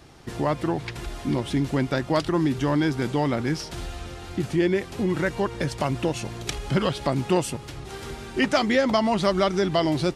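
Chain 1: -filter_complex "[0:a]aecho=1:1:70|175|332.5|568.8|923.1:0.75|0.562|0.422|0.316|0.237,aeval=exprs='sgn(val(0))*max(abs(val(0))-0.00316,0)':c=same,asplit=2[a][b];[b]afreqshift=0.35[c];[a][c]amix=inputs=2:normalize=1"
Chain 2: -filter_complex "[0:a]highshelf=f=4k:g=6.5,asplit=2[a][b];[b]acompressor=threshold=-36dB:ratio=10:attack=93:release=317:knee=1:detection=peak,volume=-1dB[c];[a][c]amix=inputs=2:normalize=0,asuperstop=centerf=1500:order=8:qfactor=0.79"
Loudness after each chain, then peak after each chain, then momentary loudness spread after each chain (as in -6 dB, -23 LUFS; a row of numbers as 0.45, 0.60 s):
-25.0, -24.0 LUFS; -7.5, -4.5 dBFS; 11, 9 LU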